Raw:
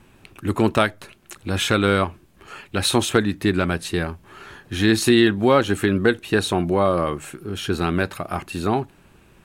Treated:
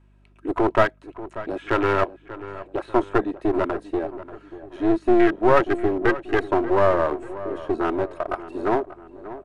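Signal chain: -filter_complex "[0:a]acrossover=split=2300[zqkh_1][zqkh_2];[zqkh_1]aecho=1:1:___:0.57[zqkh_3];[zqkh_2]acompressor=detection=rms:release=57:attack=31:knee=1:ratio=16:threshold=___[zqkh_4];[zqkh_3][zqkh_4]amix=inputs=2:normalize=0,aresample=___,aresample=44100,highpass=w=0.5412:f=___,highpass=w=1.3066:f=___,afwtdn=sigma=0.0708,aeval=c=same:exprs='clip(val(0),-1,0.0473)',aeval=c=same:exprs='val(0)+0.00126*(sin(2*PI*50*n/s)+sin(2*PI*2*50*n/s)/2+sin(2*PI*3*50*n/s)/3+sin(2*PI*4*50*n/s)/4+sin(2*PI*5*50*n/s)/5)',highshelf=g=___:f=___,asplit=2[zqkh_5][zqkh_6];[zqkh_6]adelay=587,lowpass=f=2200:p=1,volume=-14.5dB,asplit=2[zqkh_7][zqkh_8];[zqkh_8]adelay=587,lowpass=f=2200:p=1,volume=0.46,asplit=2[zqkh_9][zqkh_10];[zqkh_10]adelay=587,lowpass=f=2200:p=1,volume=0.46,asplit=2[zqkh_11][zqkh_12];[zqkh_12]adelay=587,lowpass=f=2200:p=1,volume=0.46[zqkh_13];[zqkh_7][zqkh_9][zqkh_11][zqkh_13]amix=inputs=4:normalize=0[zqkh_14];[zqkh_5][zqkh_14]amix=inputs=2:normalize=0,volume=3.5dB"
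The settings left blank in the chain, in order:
3.1, -40dB, 22050, 350, 350, -9.5, 3400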